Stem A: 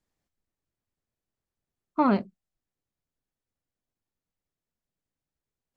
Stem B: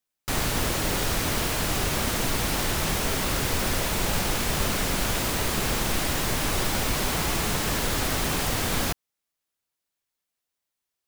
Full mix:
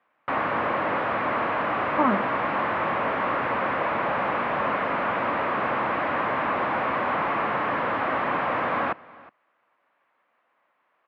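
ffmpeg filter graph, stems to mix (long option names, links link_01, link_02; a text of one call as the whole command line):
ffmpeg -i stem1.wav -i stem2.wav -filter_complex "[0:a]volume=-1dB[link_01];[1:a]asplit=2[link_02][link_03];[link_03]highpass=frequency=720:poles=1,volume=37dB,asoftclip=type=tanh:threshold=-10.5dB[link_04];[link_02][link_04]amix=inputs=2:normalize=0,lowpass=frequency=1200:poles=1,volume=-6dB,volume=-3dB,asplit=2[link_05][link_06];[link_06]volume=-22dB,aecho=0:1:365:1[link_07];[link_01][link_05][link_07]amix=inputs=3:normalize=0,highpass=150,equalizer=frequency=170:width_type=q:width=4:gain=-4,equalizer=frequency=400:width_type=q:width=4:gain=-6,equalizer=frequency=570:width_type=q:width=4:gain=3,equalizer=frequency=1100:width_type=q:width=4:gain=6,lowpass=frequency=2300:width=0.5412,lowpass=frequency=2300:width=1.3066" out.wav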